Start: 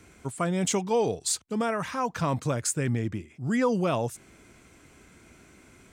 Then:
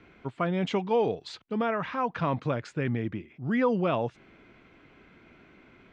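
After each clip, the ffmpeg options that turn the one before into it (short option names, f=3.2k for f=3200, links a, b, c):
-af "lowpass=f=3.5k:w=0.5412,lowpass=f=3.5k:w=1.3066,equalizer=f=72:w=1.1:g=-8"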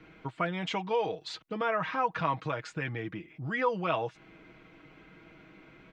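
-filter_complex "[0:a]aecho=1:1:6.3:0.61,acrossover=split=660[a][b];[a]acompressor=threshold=-36dB:ratio=4[c];[c][b]amix=inputs=2:normalize=0"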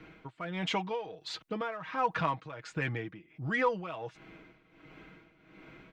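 -filter_complex "[0:a]asplit=2[a][b];[b]asoftclip=type=tanh:threshold=-31.5dB,volume=-9.5dB[c];[a][c]amix=inputs=2:normalize=0,tremolo=f=1.4:d=0.78"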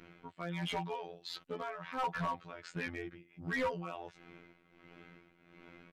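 -af "afftfilt=real='hypot(re,im)*cos(PI*b)':imag='0':win_size=2048:overlap=0.75,asoftclip=type=hard:threshold=-29dB,aresample=32000,aresample=44100"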